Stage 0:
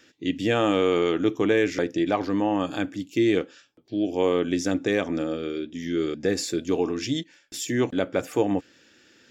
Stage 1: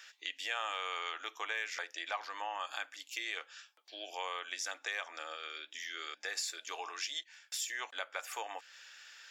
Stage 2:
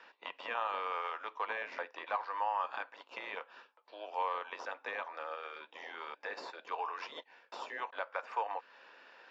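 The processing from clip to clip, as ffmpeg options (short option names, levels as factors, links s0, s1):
-af "highpass=f=880:w=0.5412,highpass=f=880:w=1.3066,acompressor=threshold=0.00447:ratio=2,volume=1.58"
-filter_complex "[0:a]asplit=2[s0][s1];[s1]acrusher=samples=16:mix=1:aa=0.000001:lfo=1:lforange=9.6:lforate=0.69,volume=0.316[s2];[s0][s2]amix=inputs=2:normalize=0,highpass=f=270:w=0.5412,highpass=f=270:w=1.3066,equalizer=f=330:t=q:w=4:g=-4,equalizer=f=510:t=q:w=4:g=6,equalizer=f=980:t=q:w=4:g=10,equalizer=f=2100:t=q:w=4:g=-4,equalizer=f=3300:t=q:w=4:g=-9,lowpass=f=3500:w=0.5412,lowpass=f=3500:w=1.3066,volume=0.891"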